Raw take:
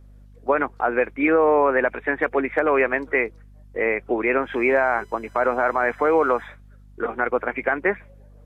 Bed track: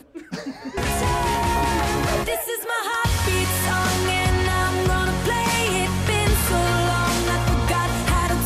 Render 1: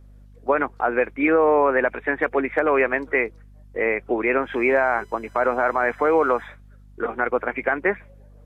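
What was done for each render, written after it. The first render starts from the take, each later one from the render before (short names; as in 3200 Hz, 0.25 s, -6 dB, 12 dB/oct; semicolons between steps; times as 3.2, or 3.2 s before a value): nothing audible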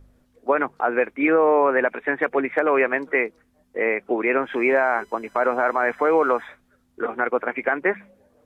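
de-hum 50 Hz, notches 4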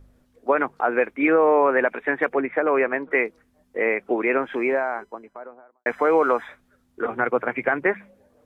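2.34–3.11 air absorption 340 m; 4.11–5.86 studio fade out; 7.06–7.87 bell 120 Hz +14 dB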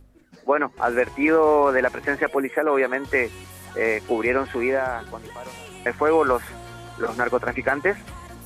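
add bed track -19.5 dB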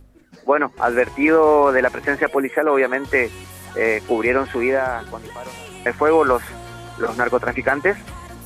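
gain +3.5 dB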